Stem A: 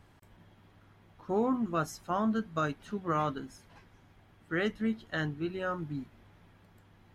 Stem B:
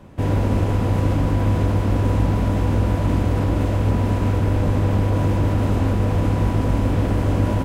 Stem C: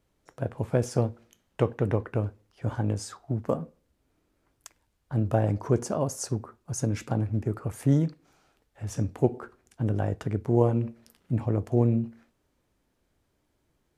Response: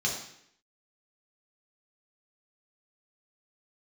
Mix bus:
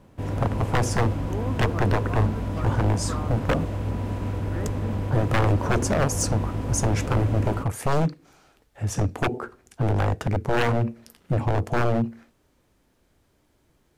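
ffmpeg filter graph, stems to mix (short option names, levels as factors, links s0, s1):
-filter_complex "[0:a]lowpass=1300,volume=0.596[s0];[1:a]volume=0.355[s1];[2:a]aeval=exprs='0.0668*(abs(mod(val(0)/0.0668+3,4)-2)-1)':c=same,acontrast=73,volume=1.12[s2];[s0][s1][s2]amix=inputs=3:normalize=0"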